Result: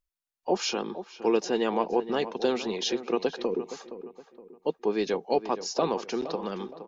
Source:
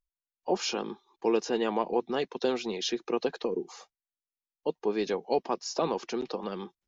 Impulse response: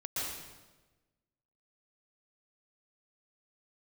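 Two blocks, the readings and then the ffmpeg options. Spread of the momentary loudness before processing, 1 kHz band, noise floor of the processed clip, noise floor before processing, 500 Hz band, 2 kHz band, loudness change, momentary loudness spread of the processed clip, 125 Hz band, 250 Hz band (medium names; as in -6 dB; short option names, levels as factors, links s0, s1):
7 LU, +2.0 dB, under -85 dBFS, under -85 dBFS, +2.0 dB, +2.0 dB, +2.0 dB, 10 LU, +2.5 dB, +2.5 dB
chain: -filter_complex "[0:a]asplit=2[s0][s1];[s1]adelay=468,lowpass=f=2000:p=1,volume=0.251,asplit=2[s2][s3];[s3]adelay=468,lowpass=f=2000:p=1,volume=0.39,asplit=2[s4][s5];[s5]adelay=468,lowpass=f=2000:p=1,volume=0.39,asplit=2[s6][s7];[s7]adelay=468,lowpass=f=2000:p=1,volume=0.39[s8];[s0][s2][s4][s6][s8]amix=inputs=5:normalize=0,volume=1.26"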